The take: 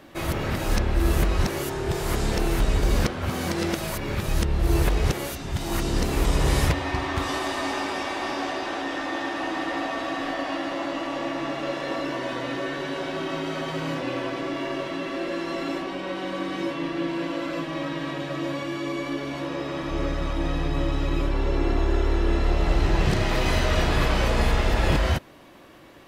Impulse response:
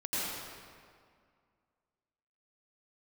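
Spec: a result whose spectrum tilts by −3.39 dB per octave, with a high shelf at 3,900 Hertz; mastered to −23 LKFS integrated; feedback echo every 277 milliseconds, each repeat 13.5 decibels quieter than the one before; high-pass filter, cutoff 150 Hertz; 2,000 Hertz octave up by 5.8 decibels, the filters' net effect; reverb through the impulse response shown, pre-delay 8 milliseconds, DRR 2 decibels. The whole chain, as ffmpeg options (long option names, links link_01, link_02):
-filter_complex "[0:a]highpass=150,equalizer=frequency=2000:width_type=o:gain=8.5,highshelf=frequency=3900:gain=-6.5,aecho=1:1:277|554:0.211|0.0444,asplit=2[link_01][link_02];[1:a]atrim=start_sample=2205,adelay=8[link_03];[link_02][link_03]afir=irnorm=-1:irlink=0,volume=-9dB[link_04];[link_01][link_04]amix=inputs=2:normalize=0,volume=1.5dB"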